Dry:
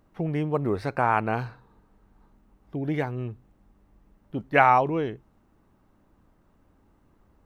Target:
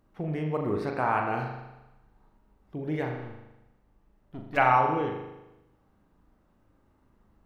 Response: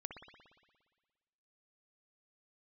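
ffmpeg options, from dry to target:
-filter_complex "[0:a]asplit=3[a][b][c];[a]afade=t=out:st=3.14:d=0.02[d];[b]aeval=exprs='(tanh(35.5*val(0)+0.45)-tanh(0.45))/35.5':c=same,afade=t=in:st=3.14:d=0.02,afade=t=out:st=4.56:d=0.02[e];[c]afade=t=in:st=4.56:d=0.02[f];[d][e][f]amix=inputs=3:normalize=0[g];[1:a]atrim=start_sample=2205,asetrate=66150,aresample=44100[h];[g][h]afir=irnorm=-1:irlink=0,volume=4dB"

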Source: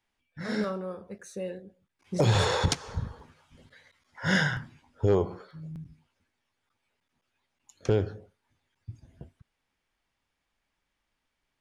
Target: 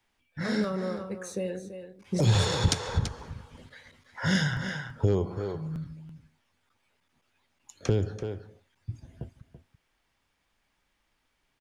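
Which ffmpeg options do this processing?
-filter_complex "[0:a]asplit=2[a][b];[b]acompressor=threshold=-33dB:ratio=6,volume=-1dB[c];[a][c]amix=inputs=2:normalize=0,aecho=1:1:334:0.266,acrossover=split=320|3000[d][e][f];[e]acompressor=threshold=-31dB:ratio=6[g];[d][g][f]amix=inputs=3:normalize=0"

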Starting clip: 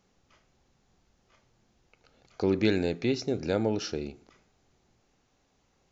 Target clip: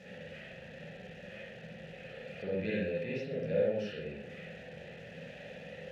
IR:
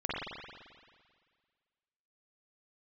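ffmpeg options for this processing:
-filter_complex "[0:a]aeval=exprs='val(0)+0.5*0.0237*sgn(val(0))':c=same,asplit=3[a][b][c];[a]bandpass=f=530:t=q:w=8,volume=0dB[d];[b]bandpass=f=1.84k:t=q:w=8,volume=-6dB[e];[c]bandpass=f=2.48k:t=q:w=8,volume=-9dB[f];[d][e][f]amix=inputs=3:normalize=0,lowshelf=f=240:t=q:w=3:g=9.5[g];[1:a]atrim=start_sample=2205,atrim=end_sample=6174[h];[g][h]afir=irnorm=-1:irlink=0"

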